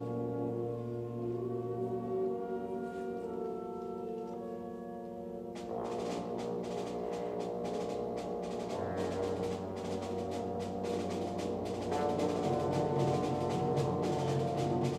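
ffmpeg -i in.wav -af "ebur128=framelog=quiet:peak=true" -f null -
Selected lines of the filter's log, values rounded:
Integrated loudness:
  I:         -36.5 LUFS
  Threshold: -46.5 LUFS
Loudness range:
  LRA:         7.0 LU
  Threshold: -57.0 LUFS
  LRA low:   -40.5 LUFS
  LRA high:  -33.5 LUFS
True peak:
  Peak:      -19.1 dBFS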